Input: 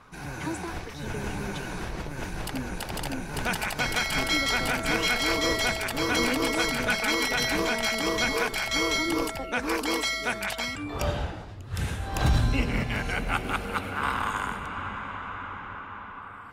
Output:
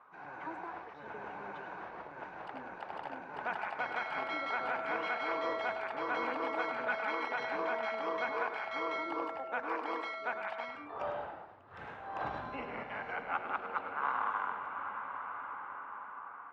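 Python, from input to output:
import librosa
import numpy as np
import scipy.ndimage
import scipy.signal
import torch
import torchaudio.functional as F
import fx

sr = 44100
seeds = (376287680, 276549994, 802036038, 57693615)

y = fx.ladder_bandpass(x, sr, hz=1200.0, resonance_pct=20)
y = fx.tilt_eq(y, sr, slope=-4.0)
y = y + 10.0 ** (-9.5 / 20.0) * np.pad(y, (int(104 * sr / 1000.0), 0))[:len(y)]
y = y * librosa.db_to_amplitude(6.0)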